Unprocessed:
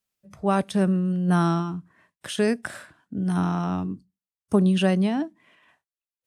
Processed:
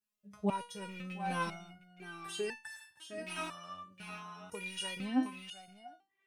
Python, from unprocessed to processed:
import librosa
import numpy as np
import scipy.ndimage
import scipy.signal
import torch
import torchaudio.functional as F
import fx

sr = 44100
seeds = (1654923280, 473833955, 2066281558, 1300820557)

y = fx.rattle_buzz(x, sr, strikes_db=-23.0, level_db=-25.0)
y = fx.tilt_shelf(y, sr, db=-6.5, hz=940.0, at=(2.55, 4.97))
y = y + 10.0 ** (-9.5 / 20.0) * np.pad(y, (int(712 * sr / 1000.0), 0))[:len(y)]
y = fx.resonator_held(y, sr, hz=2.0, low_hz=210.0, high_hz=890.0)
y = y * librosa.db_to_amplitude(5.0)